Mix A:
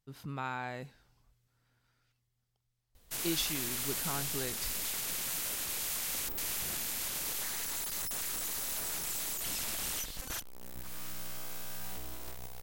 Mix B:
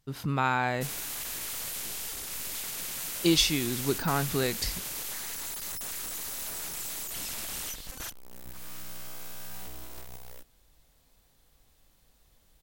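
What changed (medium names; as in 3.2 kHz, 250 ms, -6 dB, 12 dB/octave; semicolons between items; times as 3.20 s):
speech +11.0 dB; background: entry -2.30 s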